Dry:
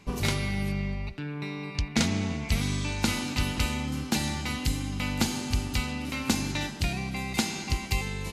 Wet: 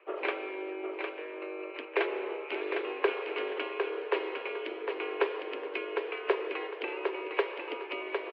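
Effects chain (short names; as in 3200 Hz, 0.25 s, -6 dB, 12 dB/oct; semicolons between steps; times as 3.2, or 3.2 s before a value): harmonic-percussive split percussive +9 dB; feedback echo 0.756 s, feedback 27%, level -5.5 dB; mistuned SSB +180 Hz 190–2500 Hz; gain -6.5 dB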